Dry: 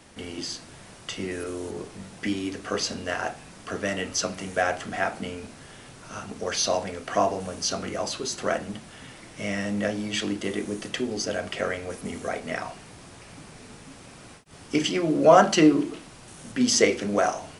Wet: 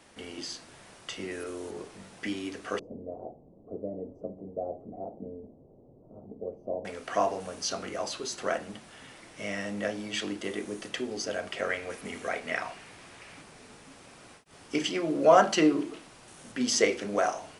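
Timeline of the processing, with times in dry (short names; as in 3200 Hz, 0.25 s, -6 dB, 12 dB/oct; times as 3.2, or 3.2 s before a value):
2.79–6.85 inverse Chebyshev low-pass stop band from 1500 Hz, stop band 50 dB
11.69–13.42 bell 2200 Hz +6 dB 1.4 oct
whole clip: tone controls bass -7 dB, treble -2 dB; gain -3.5 dB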